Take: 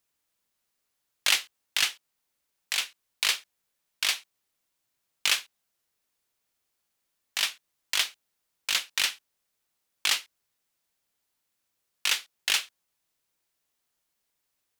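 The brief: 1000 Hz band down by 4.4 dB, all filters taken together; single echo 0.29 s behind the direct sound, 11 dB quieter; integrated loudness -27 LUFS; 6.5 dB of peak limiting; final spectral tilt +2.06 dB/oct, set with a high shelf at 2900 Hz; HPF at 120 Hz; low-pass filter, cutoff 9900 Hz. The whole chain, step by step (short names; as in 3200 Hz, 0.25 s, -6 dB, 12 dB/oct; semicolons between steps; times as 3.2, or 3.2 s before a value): HPF 120 Hz; LPF 9900 Hz; bell 1000 Hz -7 dB; high shelf 2900 Hz +5 dB; limiter -11 dBFS; echo 0.29 s -11 dB; gain +1.5 dB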